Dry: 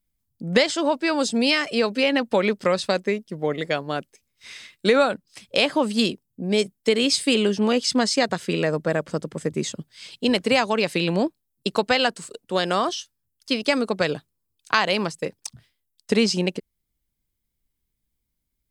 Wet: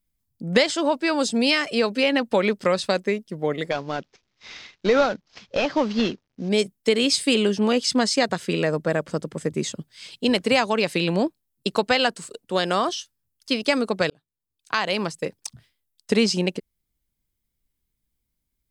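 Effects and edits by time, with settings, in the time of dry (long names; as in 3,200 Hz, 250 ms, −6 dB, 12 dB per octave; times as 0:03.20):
0:03.71–0:06.49: variable-slope delta modulation 32 kbit/s
0:14.10–0:15.16: fade in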